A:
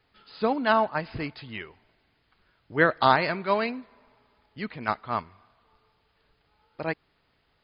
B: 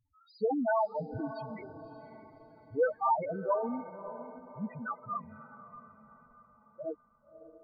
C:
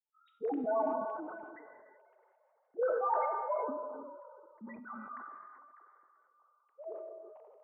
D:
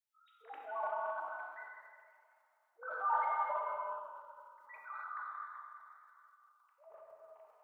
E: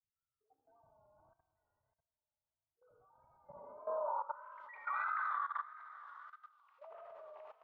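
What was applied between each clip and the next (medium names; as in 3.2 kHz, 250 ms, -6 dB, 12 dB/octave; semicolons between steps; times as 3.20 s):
peaking EQ 3.6 kHz +3 dB 0.38 oct; loudest bins only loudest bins 2; echo that smears into a reverb 585 ms, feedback 42%, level -12.5 dB
formants replaced by sine waves; gated-style reverb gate 410 ms flat, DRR 5.5 dB; decay stretcher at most 28 dB/s; trim -6.5 dB
inverse Chebyshev high-pass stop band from 210 Hz, stop band 70 dB; transient shaper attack -2 dB, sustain +10 dB; gated-style reverb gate 290 ms flat, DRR 1 dB
vibrato 1.6 Hz 80 cents; low-pass sweep 110 Hz -> 3.3 kHz, 3.38–4.63 s; level held to a coarse grid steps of 16 dB; trim +11 dB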